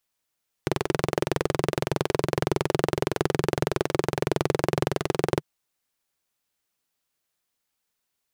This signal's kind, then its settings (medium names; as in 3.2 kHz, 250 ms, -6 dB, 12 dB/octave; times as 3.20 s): single-cylinder engine model, steady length 4.75 s, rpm 2600, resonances 150/370 Hz